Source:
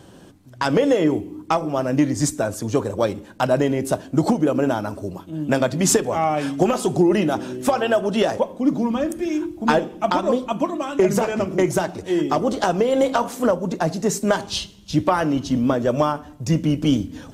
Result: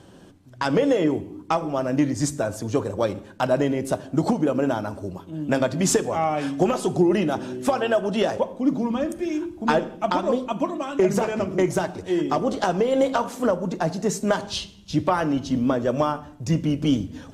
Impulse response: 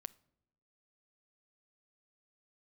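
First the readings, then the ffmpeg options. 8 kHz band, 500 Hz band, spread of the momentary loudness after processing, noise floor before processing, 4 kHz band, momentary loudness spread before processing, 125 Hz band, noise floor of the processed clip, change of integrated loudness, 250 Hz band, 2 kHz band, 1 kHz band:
−4.5 dB, −2.5 dB, 6 LU, −45 dBFS, −3.0 dB, 6 LU, −2.5 dB, −47 dBFS, −2.5 dB, −2.5 dB, −2.5 dB, −2.5 dB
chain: -filter_complex "[0:a]highshelf=frequency=12000:gain=-9.5[link_01];[1:a]atrim=start_sample=2205,atrim=end_sample=6615,asetrate=27783,aresample=44100[link_02];[link_01][link_02]afir=irnorm=-1:irlink=0"

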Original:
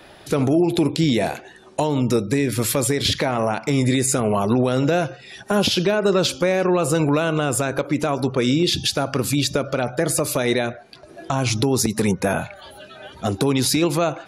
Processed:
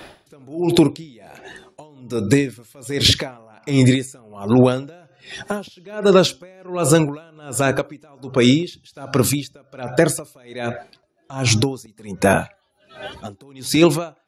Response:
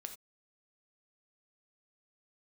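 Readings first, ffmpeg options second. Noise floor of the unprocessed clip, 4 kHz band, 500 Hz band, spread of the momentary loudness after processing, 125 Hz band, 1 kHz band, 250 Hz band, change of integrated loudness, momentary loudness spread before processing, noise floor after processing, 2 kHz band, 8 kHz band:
−45 dBFS, +1.0 dB, 0.0 dB, 20 LU, +1.0 dB, −2.5 dB, +1.0 dB, +1.5 dB, 8 LU, −62 dBFS, +0.5 dB, −1.5 dB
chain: -af "aeval=exprs='val(0)*pow(10,-34*(0.5-0.5*cos(2*PI*1.3*n/s))/20)':channel_layout=same,volume=7dB"

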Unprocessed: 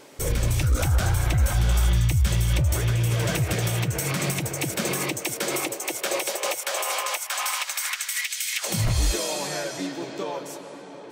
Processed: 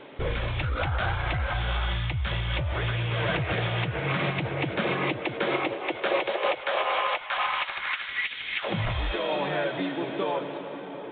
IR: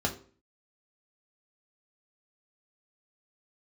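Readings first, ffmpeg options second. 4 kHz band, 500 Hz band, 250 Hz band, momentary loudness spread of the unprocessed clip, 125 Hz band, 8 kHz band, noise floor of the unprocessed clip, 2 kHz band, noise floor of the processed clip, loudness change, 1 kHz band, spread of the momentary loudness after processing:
−2.5 dB, +2.0 dB, −1.5 dB, 9 LU, −6.5 dB, below −40 dB, −40 dBFS, +2.0 dB, −38 dBFS, −3.5 dB, +3.0 dB, 3 LU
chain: -filter_complex "[0:a]acrossover=split=560|2100[link_01][link_02][link_03];[link_01]acompressor=threshold=-31dB:ratio=6[link_04];[link_03]asoftclip=type=tanh:threshold=-31.5dB[link_05];[link_04][link_02][link_05]amix=inputs=3:normalize=0,volume=3.5dB" -ar 8000 -c:a pcm_mulaw

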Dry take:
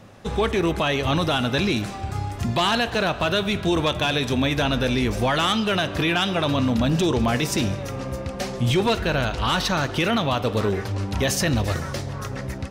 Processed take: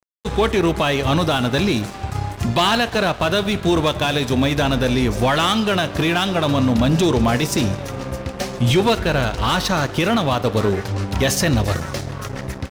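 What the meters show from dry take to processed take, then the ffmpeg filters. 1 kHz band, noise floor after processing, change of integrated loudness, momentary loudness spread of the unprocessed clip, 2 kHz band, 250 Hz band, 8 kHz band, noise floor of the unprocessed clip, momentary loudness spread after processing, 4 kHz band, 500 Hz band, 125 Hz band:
+4.0 dB, −33 dBFS, +3.5 dB, 9 LU, +2.5 dB, +4.0 dB, +4.0 dB, −33 dBFS, 10 LU, +2.5 dB, +4.0 dB, +4.0 dB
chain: -af "adynamicequalizer=threshold=0.0178:dfrequency=2600:dqfactor=0.92:tfrequency=2600:tqfactor=0.92:attack=5:release=100:ratio=0.375:range=2:mode=cutabove:tftype=bell,aeval=exprs='sgn(val(0))*max(abs(val(0))-0.0141,0)':channel_layout=same,volume=5.5dB"

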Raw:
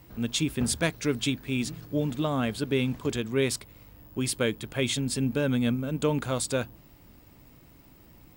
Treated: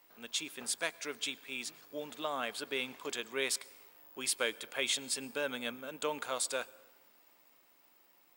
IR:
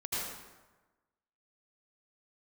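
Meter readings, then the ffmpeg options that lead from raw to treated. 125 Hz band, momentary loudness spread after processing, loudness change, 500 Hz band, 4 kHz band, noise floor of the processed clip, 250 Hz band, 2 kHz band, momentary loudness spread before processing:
−30.5 dB, 9 LU, −8.0 dB, −9.5 dB, −3.5 dB, −66 dBFS, −19.0 dB, −3.5 dB, 4 LU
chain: -filter_complex "[0:a]highpass=660,dynaudnorm=framelen=320:gausssize=13:maxgain=4dB,asplit=2[link_01][link_02];[1:a]atrim=start_sample=2205,adelay=16[link_03];[link_02][link_03]afir=irnorm=-1:irlink=0,volume=-26.5dB[link_04];[link_01][link_04]amix=inputs=2:normalize=0,volume=-6dB"

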